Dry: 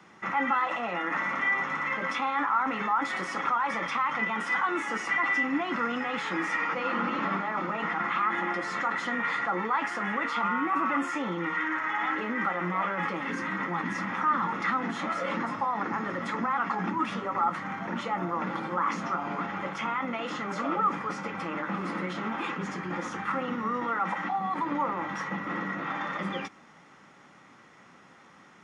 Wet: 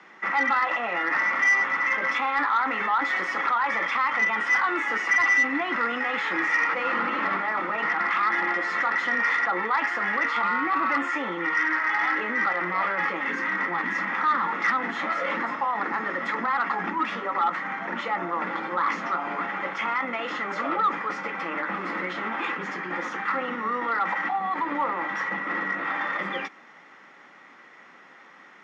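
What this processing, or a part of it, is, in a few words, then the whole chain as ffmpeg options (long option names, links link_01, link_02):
intercom: -af "highpass=300,lowpass=4900,equalizer=frequency=1900:width_type=o:width=0.54:gain=6,asoftclip=type=tanh:threshold=-16.5dB,volume=3dB"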